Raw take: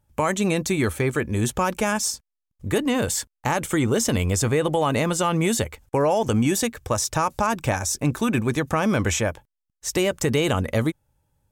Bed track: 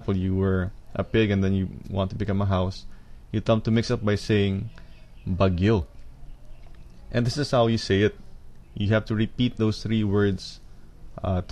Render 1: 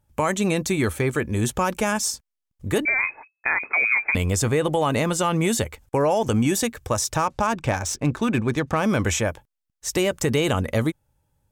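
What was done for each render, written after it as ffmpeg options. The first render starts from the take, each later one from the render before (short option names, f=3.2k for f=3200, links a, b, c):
-filter_complex "[0:a]asettb=1/sr,asplit=3[a][b][c];[a]atrim=end=2.854[d];[b]atrim=start=2.85:end=4.15,asetpts=PTS-STARTPTS,afade=t=in:d=0.004:c=qsin,afade=t=out:st=1.296:d=0.004:c=qsin,lowpass=f=2.2k:t=q:w=0.5098,lowpass=f=2.2k:t=q:w=0.6013,lowpass=f=2.2k:t=q:w=0.9,lowpass=f=2.2k:t=q:w=2.563,afreqshift=-2600[e];[c]atrim=start=4.146[f];[d][e]acrossfade=d=0.004:c1=hsin:c2=qsin[g];[g][f]acrossfade=d=0.004:c1=qsin:c2=hsin,asettb=1/sr,asplit=3[h][i][j];[h]atrim=end=7.164[k];[i]atrim=start=7.16:end=8.84,asetpts=PTS-STARTPTS,afade=t=in:d=0.004:c=qsin,afade=t=out:st=1.676:d=0.004:c=qsin,adynamicsmooth=sensitivity=4.5:basefreq=4.2k[l];[j]atrim=start=8.836[m];[k][l]acrossfade=d=0.004:c1=hsin:c2=qsin[n];[n][m]acrossfade=d=0.004:c1=qsin:c2=hsin"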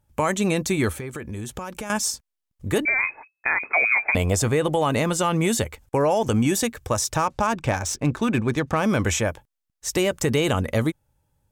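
-filter_complex "[0:a]asettb=1/sr,asplit=3[a][b][c];[a]atrim=end=0.924[d];[b]atrim=start=0.92:end=1.9,asetpts=PTS-STARTPTS,afade=t=in:d=0.004:c=qsin,afade=t=out:st=0.976:d=0.004:c=qsin,acompressor=threshold=-29dB:ratio=6:attack=3.2:release=140:knee=1:detection=peak[e];[c]atrim=start=1.896[f];[d][e]acrossfade=d=0.004:c1=hsin:c2=qsin[g];[g][f]acrossfade=d=0.004:c1=qsin:c2=hsin,asettb=1/sr,asplit=3[h][i][j];[h]atrim=end=3.744[k];[i]atrim=start=3.74:end=4.43,asetpts=PTS-STARTPTS,afade=t=in:d=0.004:c=qsin,afade=t=out:st=0.686:d=0.004:c=qsin,equalizer=f=680:t=o:w=0.77:g=10[l];[j]atrim=start=4.426[m];[k][l]acrossfade=d=0.004:c1=hsin:c2=qsin[n];[n][m]acrossfade=d=0.004:c1=qsin:c2=hsin"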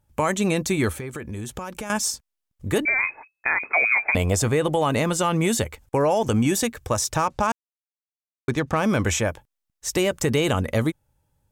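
-filter_complex "[0:a]asplit=3[a][b][c];[a]atrim=end=7.52,asetpts=PTS-STARTPTS,afade=t=out:st=7.516:d=0.004:c=hsin[d];[b]atrim=start=7.52:end=8.48,asetpts=PTS-STARTPTS,volume=0[e];[c]atrim=start=8.48,asetpts=PTS-STARTPTS,afade=t=in:d=0.004:c=hsin[f];[d][e][f]concat=n=3:v=0:a=1"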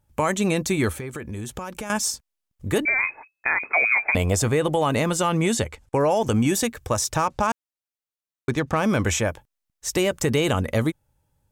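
-filter_complex "[0:a]asettb=1/sr,asplit=3[a][b][c];[a]atrim=end=5.414[d];[b]atrim=start=5.41:end=5.99,asetpts=PTS-STARTPTS,afade=t=in:d=0.004:c=qsin,afade=t=out:st=0.576:d=0.004:c=qsin,lowpass=9.7k[e];[c]atrim=start=5.986[f];[d][e]acrossfade=d=0.004:c1=hsin:c2=qsin[g];[g][f]acrossfade=d=0.004:c1=qsin:c2=hsin"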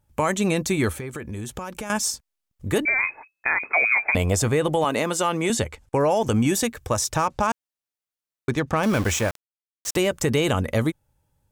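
-filter_complex "[0:a]asettb=1/sr,asplit=3[a][b][c];[a]atrim=end=4.844[d];[b]atrim=start=4.84:end=5.5,asetpts=PTS-STARTPTS,afade=t=in:d=0.004:c=qsin,afade=t=out:st=0.656:d=0.004:c=qsin,highpass=240[e];[c]atrim=start=5.496[f];[d][e]acrossfade=d=0.004:c1=hsin:c2=qsin[g];[g][f]acrossfade=d=0.004:c1=qsin:c2=hsin,asettb=1/sr,asplit=3[h][i][j];[h]atrim=end=8.834[k];[i]atrim=start=8.83:end=9.97,asetpts=PTS-STARTPTS,afade=t=in:d=0.004:c=qsin,afade=t=out:st=1.136:d=0.004:c=qsin,aeval=exprs='val(0)*gte(abs(val(0)),0.0398)':c=same[l];[j]atrim=start=9.966[m];[k][l]acrossfade=d=0.004:c1=hsin:c2=qsin[n];[n][m]acrossfade=d=0.004:c1=qsin:c2=hsin"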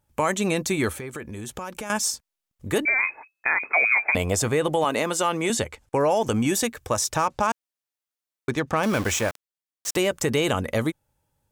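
-af "lowshelf=f=160:g=-7.5"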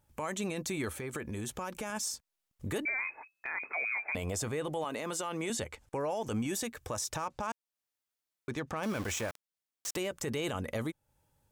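-af "acompressor=threshold=-37dB:ratio=2,alimiter=level_in=2dB:limit=-24dB:level=0:latency=1:release=14,volume=-2dB"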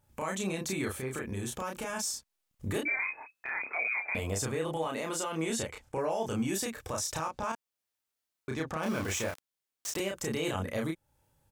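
-filter_complex "[0:a]asplit=2[a][b];[b]adelay=31,volume=-2dB[c];[a][c]amix=inputs=2:normalize=0"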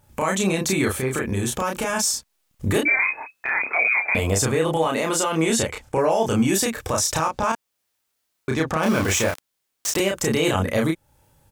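-af "volume=12dB"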